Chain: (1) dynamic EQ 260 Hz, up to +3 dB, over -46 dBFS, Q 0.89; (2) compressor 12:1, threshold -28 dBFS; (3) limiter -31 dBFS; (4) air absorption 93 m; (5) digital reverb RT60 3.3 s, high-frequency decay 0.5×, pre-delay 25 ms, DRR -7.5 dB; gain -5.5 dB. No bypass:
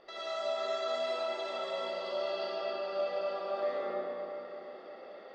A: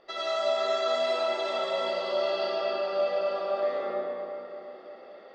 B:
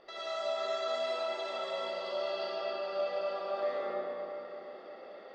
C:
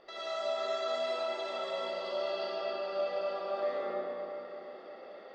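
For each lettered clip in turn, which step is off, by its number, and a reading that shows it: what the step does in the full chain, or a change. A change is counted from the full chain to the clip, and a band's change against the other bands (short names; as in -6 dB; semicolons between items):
3, mean gain reduction 4.5 dB; 1, 250 Hz band -2.0 dB; 2, mean gain reduction 2.5 dB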